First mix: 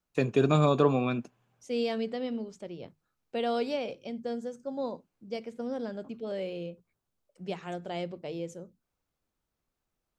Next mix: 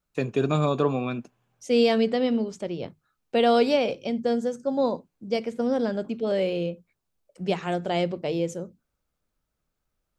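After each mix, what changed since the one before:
second voice +10.0 dB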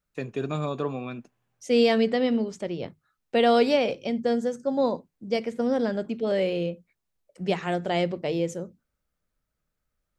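first voice -6.0 dB; master: add peaking EQ 1.9 kHz +4.5 dB 0.35 oct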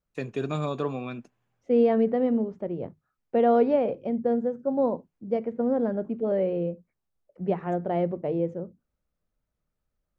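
second voice: add low-pass 1 kHz 12 dB/octave

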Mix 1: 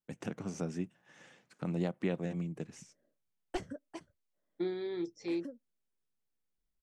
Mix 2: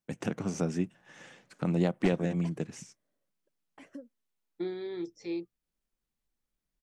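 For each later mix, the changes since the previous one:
first voice +6.5 dB; background: entry -1.50 s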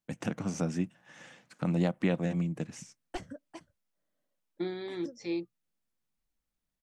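second voice +4.0 dB; background: entry +1.10 s; master: add peaking EQ 400 Hz -7.5 dB 0.33 oct

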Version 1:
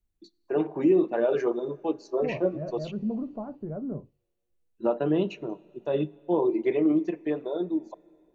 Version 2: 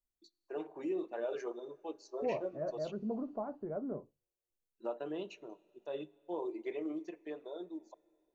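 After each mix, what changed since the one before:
first voice -12.0 dB; master: add tone controls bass -15 dB, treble +9 dB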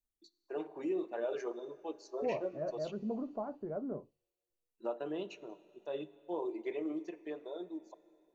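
first voice: send +7.5 dB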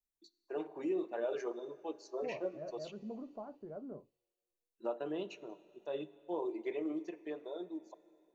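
second voice -7.0 dB

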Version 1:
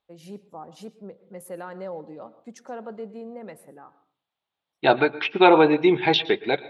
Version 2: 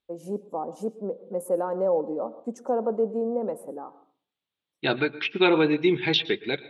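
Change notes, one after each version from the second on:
first voice: add graphic EQ 125/250/500/1000/2000/4000/8000 Hz -5/+9/+10/+8/-11/-11/+6 dB; second voice: add peaking EQ 780 Hz -13.5 dB 1.3 oct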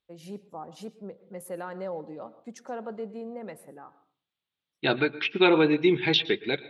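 first voice: add graphic EQ 125/250/500/1000/2000/4000/8000 Hz +5/-9/-10/-8/+11/+11/-6 dB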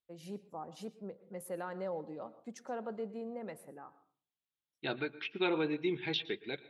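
first voice -4.0 dB; second voice -12.0 dB

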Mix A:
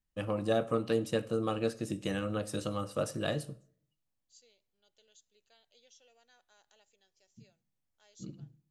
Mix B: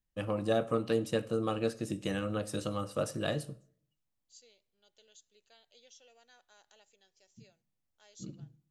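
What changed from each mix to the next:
second voice +3.5 dB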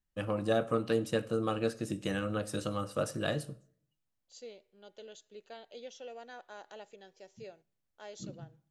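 first voice: add peaking EQ 1.5 kHz +3.5 dB 0.41 oct; second voice: remove pre-emphasis filter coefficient 0.9

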